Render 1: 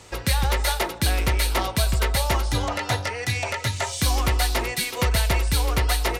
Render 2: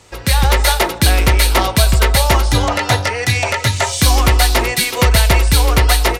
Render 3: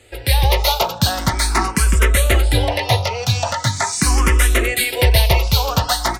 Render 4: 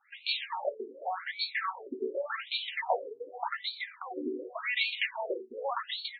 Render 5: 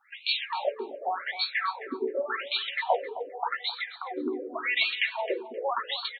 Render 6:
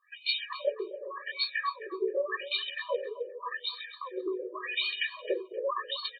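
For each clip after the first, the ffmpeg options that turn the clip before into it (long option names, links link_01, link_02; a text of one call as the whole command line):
ffmpeg -i in.wav -af "dynaudnorm=framelen=180:gausssize=3:maxgain=11dB" out.wav
ffmpeg -i in.wav -filter_complex "[0:a]asplit=2[link_01][link_02];[link_02]afreqshift=0.42[link_03];[link_01][link_03]amix=inputs=2:normalize=1" out.wav
ffmpeg -i in.wav -af "afftfilt=real='re*between(b*sr/1024,320*pow(3200/320,0.5+0.5*sin(2*PI*0.87*pts/sr))/1.41,320*pow(3200/320,0.5+0.5*sin(2*PI*0.87*pts/sr))*1.41)':imag='im*between(b*sr/1024,320*pow(3200/320,0.5+0.5*sin(2*PI*0.87*pts/sr))/1.41,320*pow(3200/320,0.5+0.5*sin(2*PI*0.87*pts/sr))*1.41)':win_size=1024:overlap=0.75,volume=-7.5dB" out.wav
ffmpeg -i in.wav -filter_complex "[0:a]asplit=2[link_01][link_02];[link_02]adelay=263,lowpass=frequency=4100:poles=1,volume=-13.5dB,asplit=2[link_03][link_04];[link_04]adelay=263,lowpass=frequency=4100:poles=1,volume=0.16[link_05];[link_01][link_03][link_05]amix=inputs=3:normalize=0,volume=4dB" out.wav
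ffmpeg -i in.wav -af "afftfilt=real='re*eq(mod(floor(b*sr/1024/320),2),1)':imag='im*eq(mod(floor(b*sr/1024/320),2),1)':win_size=1024:overlap=0.75" out.wav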